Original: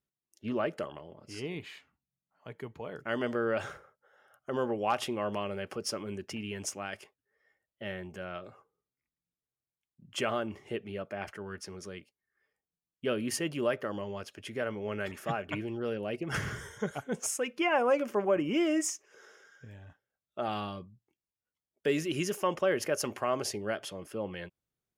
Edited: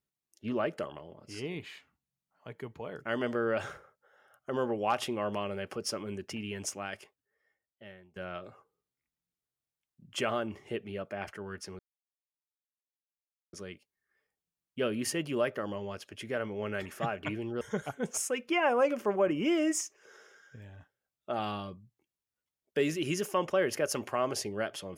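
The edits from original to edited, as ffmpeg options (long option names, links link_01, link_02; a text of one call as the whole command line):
ffmpeg -i in.wav -filter_complex "[0:a]asplit=4[link_01][link_02][link_03][link_04];[link_01]atrim=end=8.16,asetpts=PTS-STARTPTS,afade=type=out:start_time=6.88:duration=1.28:silence=0.0794328[link_05];[link_02]atrim=start=8.16:end=11.79,asetpts=PTS-STARTPTS,afade=type=in:duration=0.004:curve=hsin:silence=0.0794328,afade=type=out:start_time=3.626:duration=0.004:curve=hsin,apad=pad_dur=1.74[link_06];[link_03]atrim=start=11.79:end=15.872,asetpts=PTS-STARTPTS,afade=type=in:duration=0.004:curve=hsin[link_07];[link_04]atrim=start=16.698[link_08];[link_05][link_06][link_07]concat=n=3:v=0:a=1[link_09];[link_09][link_08]acrossfade=duration=0.004:curve1=hsin:curve2=hsin" out.wav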